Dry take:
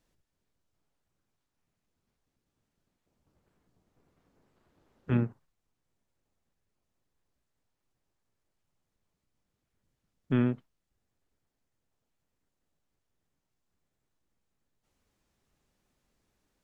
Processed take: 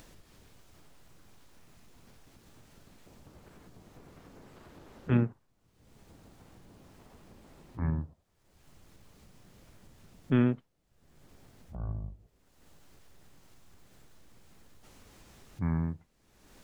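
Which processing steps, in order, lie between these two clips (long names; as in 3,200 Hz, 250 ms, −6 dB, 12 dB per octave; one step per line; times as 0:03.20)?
delay with pitch and tempo change per echo 156 ms, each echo −7 semitones, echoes 2, each echo −6 dB
upward compression, threshold −40 dBFS
level +1.5 dB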